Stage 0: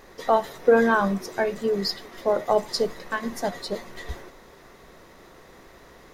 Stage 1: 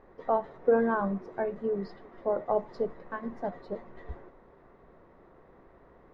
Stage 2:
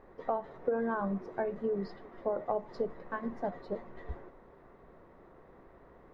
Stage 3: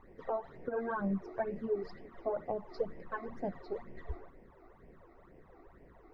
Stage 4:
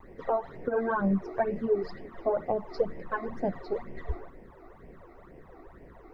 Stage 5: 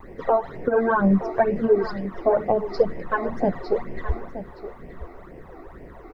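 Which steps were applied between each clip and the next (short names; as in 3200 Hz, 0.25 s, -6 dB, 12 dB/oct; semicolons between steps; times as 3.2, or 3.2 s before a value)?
LPF 1200 Hz 12 dB/oct; gain -6 dB
compressor 6:1, threshold -28 dBFS, peak gain reduction 9.5 dB
phaser stages 12, 2.1 Hz, lowest notch 160–1300 Hz; gain +1 dB
vibrato 0.84 Hz 23 cents; gain +7.5 dB
echo 0.921 s -13 dB; gain +8 dB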